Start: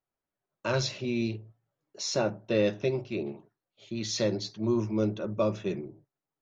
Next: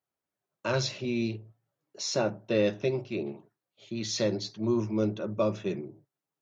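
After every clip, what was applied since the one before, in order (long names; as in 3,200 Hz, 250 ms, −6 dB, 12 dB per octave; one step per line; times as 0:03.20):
high-pass filter 78 Hz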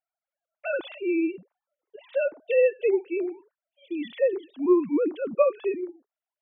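three sine waves on the formant tracks
level +4.5 dB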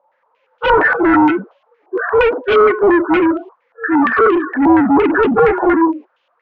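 partials spread apart or drawn together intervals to 75%
mid-hump overdrive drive 36 dB, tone 1,100 Hz, clips at −10 dBFS
low-pass on a step sequencer 8.6 Hz 840–3,000 Hz
level +5 dB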